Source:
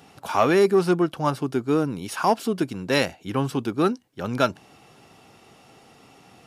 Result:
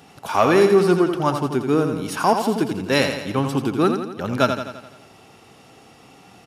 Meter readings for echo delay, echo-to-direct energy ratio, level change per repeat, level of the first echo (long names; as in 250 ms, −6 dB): 85 ms, −5.5 dB, −5.0 dB, −7.0 dB